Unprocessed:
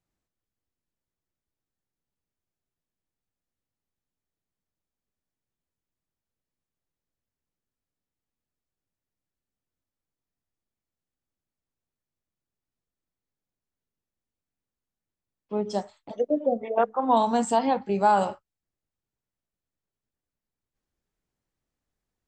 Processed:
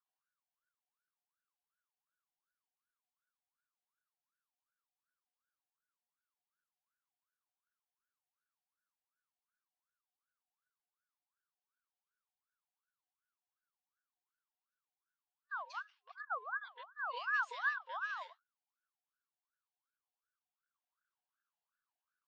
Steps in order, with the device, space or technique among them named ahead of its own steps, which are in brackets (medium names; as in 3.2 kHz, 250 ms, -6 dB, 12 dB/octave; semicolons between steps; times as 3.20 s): FFT band-reject 320–2000 Hz; voice changer toy (ring modulator with a swept carrier 1.1 kHz, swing 35%, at 2.7 Hz; cabinet simulation 480–4500 Hz, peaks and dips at 570 Hz -9 dB, 840 Hz -3 dB, 1.6 kHz +9 dB, 2.8 kHz +6 dB); trim -8.5 dB